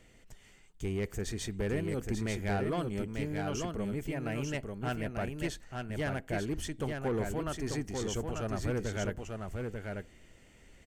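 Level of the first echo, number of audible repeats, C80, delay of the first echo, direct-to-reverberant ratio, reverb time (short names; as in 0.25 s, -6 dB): -4.5 dB, 1, none, 0.891 s, none, none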